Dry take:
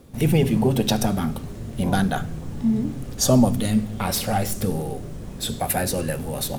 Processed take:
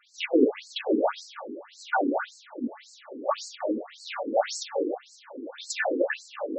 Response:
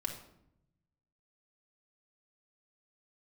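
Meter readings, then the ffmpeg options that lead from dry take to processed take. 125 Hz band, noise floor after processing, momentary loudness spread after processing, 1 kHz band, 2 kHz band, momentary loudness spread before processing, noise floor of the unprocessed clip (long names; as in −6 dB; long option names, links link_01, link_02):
below −35 dB, −54 dBFS, 15 LU, −3.5 dB, +0.5 dB, 11 LU, −35 dBFS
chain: -filter_complex "[0:a]highpass=230,bandreject=frequency=60:width_type=h:width=6,bandreject=frequency=120:width_type=h:width=6,bandreject=frequency=180:width_type=h:width=6,bandreject=frequency=240:width_type=h:width=6,bandreject=frequency=300:width_type=h:width=6,bandreject=frequency=360:width_type=h:width=6,bandreject=frequency=420:width_type=h:width=6,bandreject=frequency=480:width_type=h:width=6,bandreject=frequency=540:width_type=h:width=6[link_01];[1:a]atrim=start_sample=2205,afade=type=out:start_time=0.35:duration=0.01,atrim=end_sample=15876[link_02];[link_01][link_02]afir=irnorm=-1:irlink=0,afftfilt=real='re*between(b*sr/1024,330*pow(5900/330,0.5+0.5*sin(2*PI*1.8*pts/sr))/1.41,330*pow(5900/330,0.5+0.5*sin(2*PI*1.8*pts/sr))*1.41)':imag='im*between(b*sr/1024,330*pow(5900/330,0.5+0.5*sin(2*PI*1.8*pts/sr))/1.41,330*pow(5900/330,0.5+0.5*sin(2*PI*1.8*pts/sr))*1.41)':win_size=1024:overlap=0.75,volume=6dB"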